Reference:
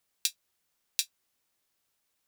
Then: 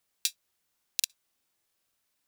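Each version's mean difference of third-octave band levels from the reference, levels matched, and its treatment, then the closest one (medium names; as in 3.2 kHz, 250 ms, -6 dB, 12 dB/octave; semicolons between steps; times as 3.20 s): 2.5 dB: crackling interface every 0.10 s, samples 2048, repeat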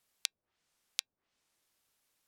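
8.5 dB: low-pass that closes with the level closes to 560 Hz, closed at -36 dBFS; trim +1 dB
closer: first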